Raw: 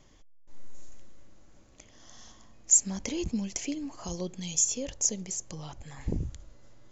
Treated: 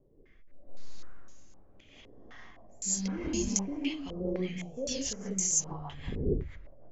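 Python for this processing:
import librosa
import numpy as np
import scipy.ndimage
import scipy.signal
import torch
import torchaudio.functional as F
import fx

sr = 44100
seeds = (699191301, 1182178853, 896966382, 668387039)

y = fx.rev_gated(x, sr, seeds[0], gate_ms=220, shape='rising', drr_db=-7.0)
y = fx.rotary_switch(y, sr, hz=0.75, then_hz=6.3, switch_at_s=3.36)
y = fx.filter_held_lowpass(y, sr, hz=3.9, low_hz=450.0, high_hz=6600.0)
y = y * librosa.db_to_amplitude(-5.5)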